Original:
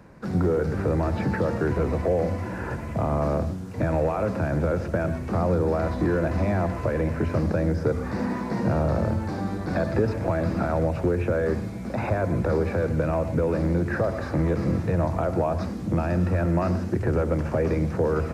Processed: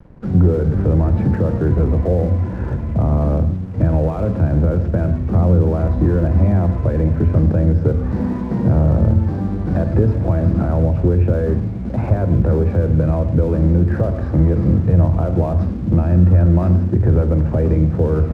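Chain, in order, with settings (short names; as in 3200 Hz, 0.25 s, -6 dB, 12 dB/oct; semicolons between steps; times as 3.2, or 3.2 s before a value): tilt -4 dB/oct; crossover distortion -42.5 dBFS; doubler 45 ms -14 dB; gain -1 dB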